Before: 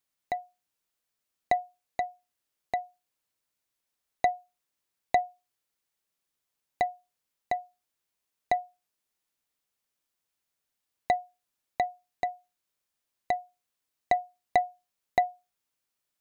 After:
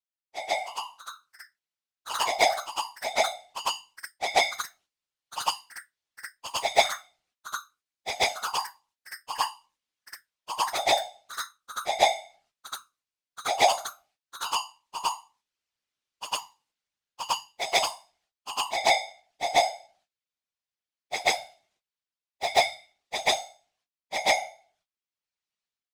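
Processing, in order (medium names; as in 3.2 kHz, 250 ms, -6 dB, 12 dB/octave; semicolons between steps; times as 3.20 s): square wave that keeps the level; low-pass 4.9 kHz 12 dB/octave; gate -56 dBFS, range -19 dB; treble shelf 2.3 kHz +10.5 dB; level rider gain up to 15 dB; bass shelf 69 Hz +5 dB; plain phase-vocoder stretch 1.6×; whisper effect; on a send: reverse echo 135 ms -8.5 dB; on the sum: ever faster or slower copies 396 ms, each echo +5 st, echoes 3, each echo -6 dB; trim -3 dB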